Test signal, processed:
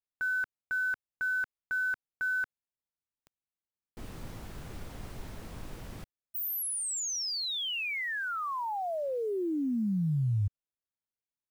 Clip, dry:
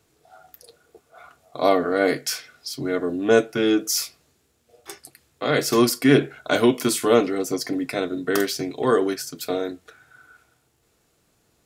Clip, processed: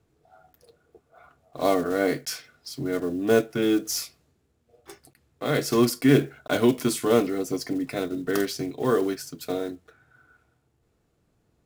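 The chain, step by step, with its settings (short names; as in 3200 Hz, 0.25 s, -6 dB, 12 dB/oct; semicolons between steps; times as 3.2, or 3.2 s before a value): block floating point 5-bit; low shelf 270 Hz +7.5 dB; mismatched tape noise reduction decoder only; gain -5.5 dB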